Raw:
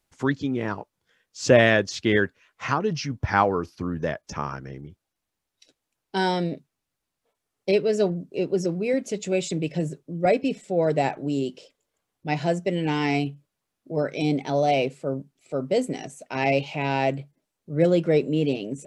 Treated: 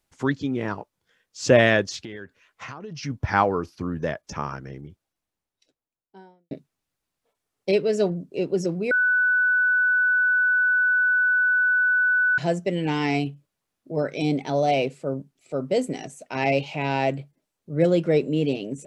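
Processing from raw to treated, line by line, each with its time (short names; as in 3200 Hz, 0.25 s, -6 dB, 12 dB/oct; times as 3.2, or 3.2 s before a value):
1.96–3.03 compressor 10:1, threshold -33 dBFS
4.83–6.51 studio fade out
8.91–12.38 bleep 1490 Hz -17 dBFS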